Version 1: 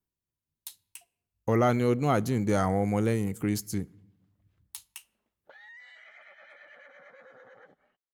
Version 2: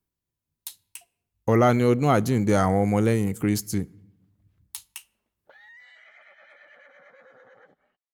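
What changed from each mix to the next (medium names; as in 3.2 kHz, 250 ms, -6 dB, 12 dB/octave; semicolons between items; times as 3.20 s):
speech +5.0 dB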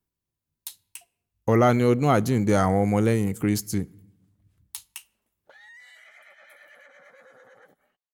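background: remove Gaussian low-pass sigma 1.7 samples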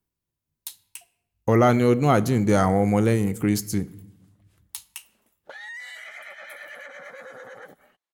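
speech: send +7.5 dB; background +11.0 dB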